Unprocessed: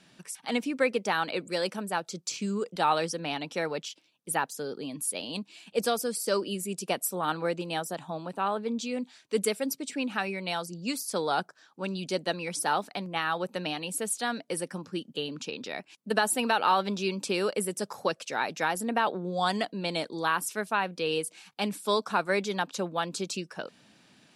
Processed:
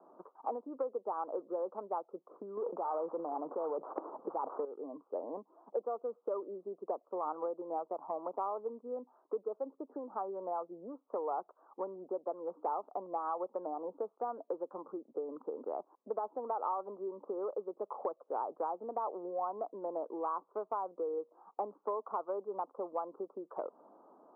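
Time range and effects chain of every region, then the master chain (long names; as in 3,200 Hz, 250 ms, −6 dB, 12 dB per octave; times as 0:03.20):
0:02.57–0:04.65: samples sorted by size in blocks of 16 samples + envelope flattener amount 100%
whole clip: Butterworth low-pass 1,200 Hz 72 dB per octave; downward compressor 8 to 1, threshold −41 dBFS; high-pass filter 370 Hz 24 dB per octave; level +8 dB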